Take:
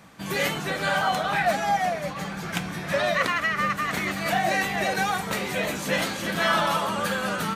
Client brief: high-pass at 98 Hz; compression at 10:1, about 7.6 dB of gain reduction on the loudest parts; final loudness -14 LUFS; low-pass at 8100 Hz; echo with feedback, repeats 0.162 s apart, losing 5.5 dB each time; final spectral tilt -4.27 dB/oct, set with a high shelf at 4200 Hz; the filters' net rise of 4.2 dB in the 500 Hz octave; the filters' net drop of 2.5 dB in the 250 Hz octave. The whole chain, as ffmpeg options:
-af "highpass=98,lowpass=8.1k,equalizer=f=250:t=o:g=-5,equalizer=f=500:t=o:g=6.5,highshelf=f=4.2k:g=-6,acompressor=threshold=-24dB:ratio=10,aecho=1:1:162|324|486|648|810|972|1134:0.531|0.281|0.149|0.079|0.0419|0.0222|0.0118,volume=13dB"

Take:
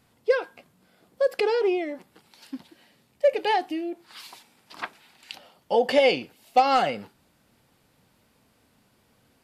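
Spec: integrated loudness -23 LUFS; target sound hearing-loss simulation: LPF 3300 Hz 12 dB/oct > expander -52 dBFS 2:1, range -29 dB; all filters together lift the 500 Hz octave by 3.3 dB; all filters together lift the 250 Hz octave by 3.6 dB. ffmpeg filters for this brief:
-af "lowpass=3.3k,equalizer=f=250:t=o:g=3.5,equalizer=f=500:t=o:g=3,agate=range=-29dB:threshold=-52dB:ratio=2,volume=-1.5dB"

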